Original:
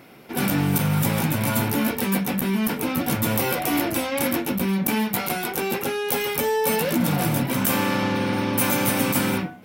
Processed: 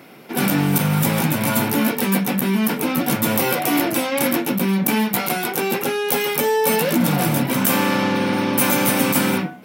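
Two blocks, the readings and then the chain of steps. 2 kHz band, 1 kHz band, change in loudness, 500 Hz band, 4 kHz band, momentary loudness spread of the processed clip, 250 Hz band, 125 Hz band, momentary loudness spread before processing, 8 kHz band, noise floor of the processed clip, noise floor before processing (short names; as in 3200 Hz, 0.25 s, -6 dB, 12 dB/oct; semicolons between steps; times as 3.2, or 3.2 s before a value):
+4.0 dB, +4.0 dB, +4.0 dB, +4.0 dB, +4.0 dB, 4 LU, +4.0 dB, +2.0 dB, 4 LU, +4.0 dB, -29 dBFS, -34 dBFS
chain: HPF 130 Hz 24 dB/oct; gain +4 dB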